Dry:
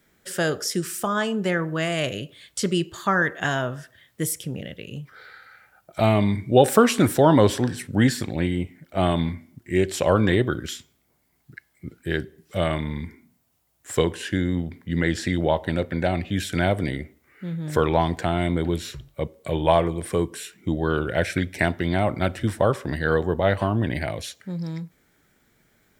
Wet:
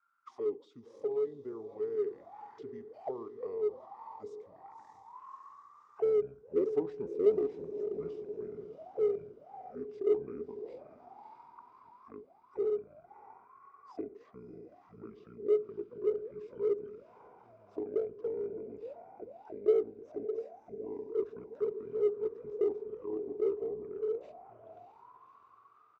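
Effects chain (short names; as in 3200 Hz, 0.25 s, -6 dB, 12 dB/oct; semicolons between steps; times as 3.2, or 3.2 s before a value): tone controls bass -1 dB, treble +5 dB; diffused feedback echo 0.601 s, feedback 52%, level -10 dB; auto-wah 630–2100 Hz, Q 21, down, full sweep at -21.5 dBFS; in parallel at -10 dB: overloaded stage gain 33 dB; on the sum: pitch shift -7 st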